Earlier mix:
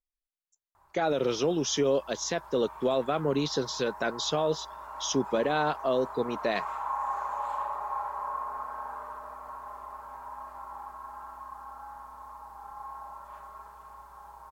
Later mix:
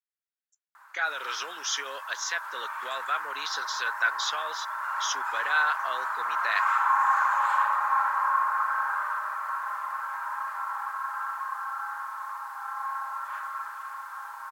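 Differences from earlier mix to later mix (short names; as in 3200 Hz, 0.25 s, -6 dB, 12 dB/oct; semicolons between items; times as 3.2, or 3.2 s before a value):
background +10.0 dB; master: add resonant high-pass 1500 Hz, resonance Q 3.4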